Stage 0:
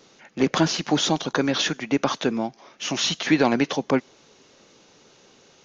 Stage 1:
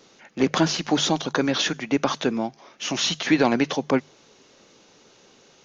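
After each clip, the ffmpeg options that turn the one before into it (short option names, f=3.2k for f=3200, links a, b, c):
-af "bandreject=f=50:t=h:w=6,bandreject=f=100:t=h:w=6,bandreject=f=150:t=h:w=6"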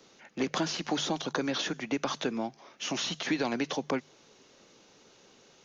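-filter_complex "[0:a]acrossover=split=200|1300|3300[a][b][c][d];[a]acompressor=threshold=-39dB:ratio=4[e];[b]acompressor=threshold=-24dB:ratio=4[f];[c]acompressor=threshold=-34dB:ratio=4[g];[d]acompressor=threshold=-31dB:ratio=4[h];[e][f][g][h]amix=inputs=4:normalize=0,volume=-4.5dB"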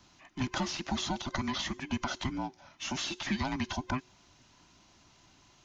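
-af "afftfilt=real='real(if(between(b,1,1008),(2*floor((b-1)/24)+1)*24-b,b),0)':imag='imag(if(between(b,1,1008),(2*floor((b-1)/24)+1)*24-b,b),0)*if(between(b,1,1008),-1,1)':win_size=2048:overlap=0.75,volume=-2.5dB"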